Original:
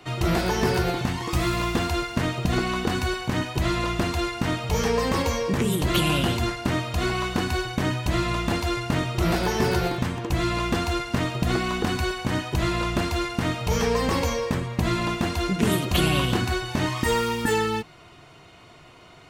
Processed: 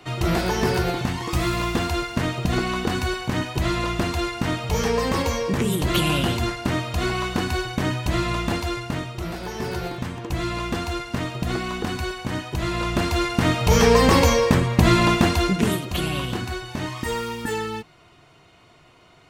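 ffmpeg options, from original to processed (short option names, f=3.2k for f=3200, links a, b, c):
-af "volume=18dB,afade=t=out:st=8.43:d=0.9:silence=0.316228,afade=t=in:st=9.33:d=0.99:silence=0.446684,afade=t=in:st=12.61:d=1.33:silence=0.316228,afade=t=out:st=15.17:d=0.65:silence=0.251189"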